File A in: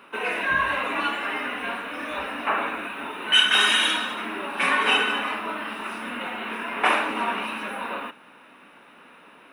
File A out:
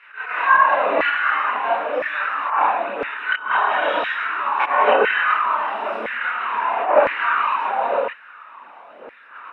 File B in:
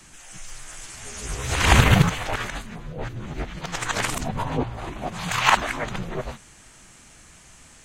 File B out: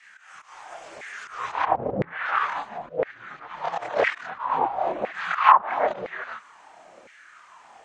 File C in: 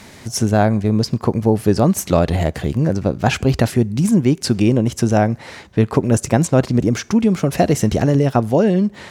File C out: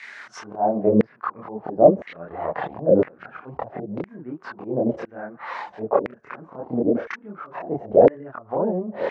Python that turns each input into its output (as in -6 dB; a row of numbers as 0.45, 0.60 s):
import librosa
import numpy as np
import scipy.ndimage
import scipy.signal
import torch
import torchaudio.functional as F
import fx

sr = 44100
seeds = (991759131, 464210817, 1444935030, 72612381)

y = fx.env_lowpass_down(x, sr, base_hz=370.0, full_db=-11.5)
y = fx.tilt_eq(y, sr, slope=-4.0)
y = fx.auto_swell(y, sr, attack_ms=148.0)
y = fx.chorus_voices(y, sr, voices=4, hz=1.2, base_ms=27, depth_ms=3.5, mix_pct=55)
y = fx.filter_lfo_highpass(y, sr, shape='saw_down', hz=0.99, low_hz=500.0, high_hz=2000.0, q=4.5)
y = fx.air_absorb(y, sr, metres=60.0)
y = librosa.util.normalize(y) * 10.0 ** (-1.5 / 20.0)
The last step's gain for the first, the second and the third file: +7.5, +4.5, +6.0 dB